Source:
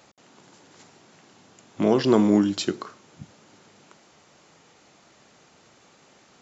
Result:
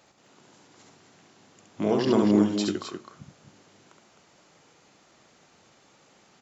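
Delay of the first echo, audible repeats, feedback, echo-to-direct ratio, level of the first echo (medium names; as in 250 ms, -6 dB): 68 ms, 2, no regular repeats, -2.0 dB, -3.5 dB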